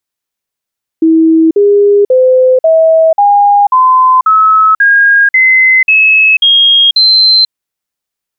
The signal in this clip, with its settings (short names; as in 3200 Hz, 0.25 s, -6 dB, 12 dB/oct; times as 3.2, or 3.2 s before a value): stepped sine 323 Hz up, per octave 3, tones 12, 0.49 s, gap 0.05 s -3 dBFS